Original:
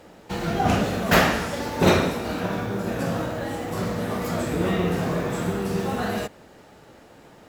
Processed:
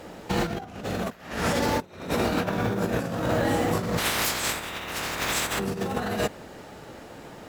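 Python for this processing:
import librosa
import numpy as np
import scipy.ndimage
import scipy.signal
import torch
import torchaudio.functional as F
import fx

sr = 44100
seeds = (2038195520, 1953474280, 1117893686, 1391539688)

y = fx.spec_clip(x, sr, under_db=28, at=(3.97, 5.58), fade=0.02)
y = fx.over_compress(y, sr, threshold_db=-29.0, ratio=-0.5)
y = F.gain(torch.from_numpy(y), 1.5).numpy()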